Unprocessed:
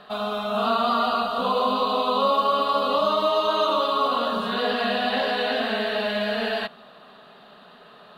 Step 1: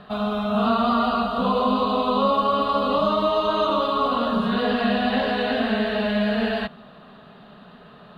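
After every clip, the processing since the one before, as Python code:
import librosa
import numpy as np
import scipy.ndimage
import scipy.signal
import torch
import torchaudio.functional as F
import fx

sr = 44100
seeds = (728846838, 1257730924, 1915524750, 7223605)

y = fx.bass_treble(x, sr, bass_db=14, treble_db=-7)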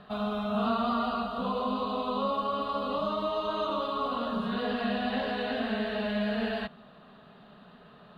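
y = fx.rider(x, sr, range_db=10, speed_s=2.0)
y = y * librosa.db_to_amplitude(-9.0)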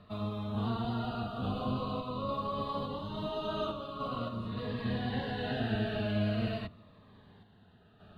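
y = fx.octave_divider(x, sr, octaves=1, level_db=0.0)
y = fx.tremolo_random(y, sr, seeds[0], hz=3.5, depth_pct=55)
y = fx.notch_cascade(y, sr, direction='falling', hz=0.45)
y = y * librosa.db_to_amplitude(-2.0)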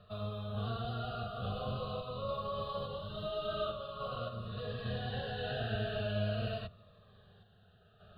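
y = fx.fixed_phaser(x, sr, hz=1400.0, stages=8)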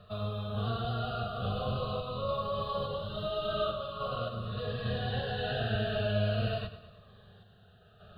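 y = fx.echo_feedback(x, sr, ms=104, feedback_pct=50, wet_db=-13.0)
y = y * librosa.db_to_amplitude(4.5)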